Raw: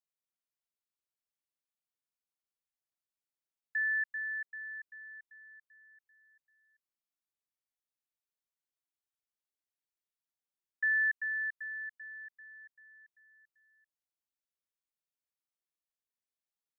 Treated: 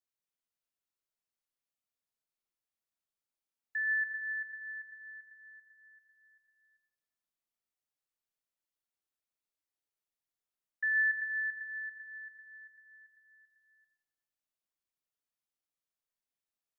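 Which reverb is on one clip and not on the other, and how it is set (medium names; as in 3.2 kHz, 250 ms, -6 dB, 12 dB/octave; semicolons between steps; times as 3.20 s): algorithmic reverb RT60 1.6 s, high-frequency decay 0.25×, pre-delay 20 ms, DRR 4 dB; trim -2 dB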